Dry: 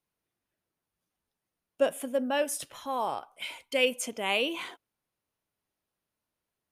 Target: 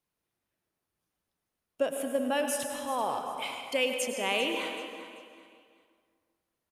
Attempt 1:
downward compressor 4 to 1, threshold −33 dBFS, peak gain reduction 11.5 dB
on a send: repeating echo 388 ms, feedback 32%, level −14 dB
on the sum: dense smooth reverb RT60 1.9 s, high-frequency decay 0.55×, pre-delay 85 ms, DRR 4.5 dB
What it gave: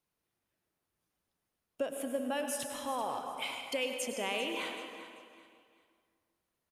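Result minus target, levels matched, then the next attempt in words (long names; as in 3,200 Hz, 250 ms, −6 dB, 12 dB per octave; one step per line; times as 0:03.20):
downward compressor: peak gain reduction +6.5 dB
downward compressor 4 to 1, threshold −24 dBFS, peak gain reduction 5 dB
on a send: repeating echo 388 ms, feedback 32%, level −14 dB
on the sum: dense smooth reverb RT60 1.9 s, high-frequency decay 0.55×, pre-delay 85 ms, DRR 4.5 dB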